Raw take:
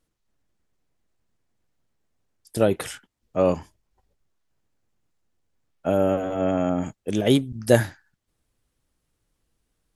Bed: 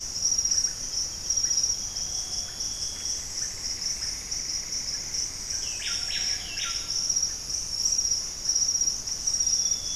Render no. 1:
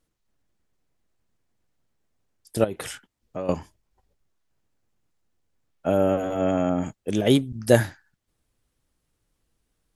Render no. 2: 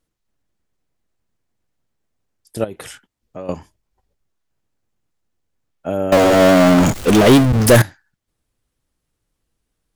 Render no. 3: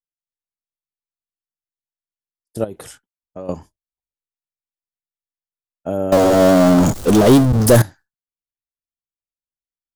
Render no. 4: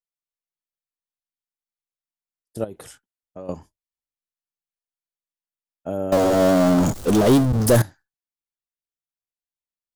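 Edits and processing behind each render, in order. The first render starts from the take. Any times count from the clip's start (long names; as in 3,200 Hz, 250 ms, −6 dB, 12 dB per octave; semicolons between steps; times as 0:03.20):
0:02.64–0:03.49: downward compressor 4 to 1, threshold −28 dBFS; 0:06.19–0:06.61: high-shelf EQ 7,000 Hz +9 dB
0:06.12–0:07.82: power curve on the samples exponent 0.35
downward expander −34 dBFS; parametric band 2,300 Hz −9 dB 1.4 octaves
level −5 dB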